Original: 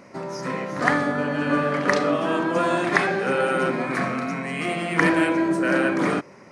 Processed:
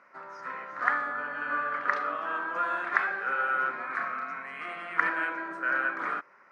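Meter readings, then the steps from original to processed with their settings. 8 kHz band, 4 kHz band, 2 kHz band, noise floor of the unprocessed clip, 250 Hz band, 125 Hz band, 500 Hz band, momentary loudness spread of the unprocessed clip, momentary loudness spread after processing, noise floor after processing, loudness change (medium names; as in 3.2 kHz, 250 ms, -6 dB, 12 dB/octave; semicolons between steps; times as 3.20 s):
under -20 dB, -16.0 dB, -3.5 dB, -47 dBFS, -23.0 dB, under -25 dB, -17.5 dB, 7 LU, 10 LU, -58 dBFS, -7.5 dB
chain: band-pass filter 1.4 kHz, Q 3.2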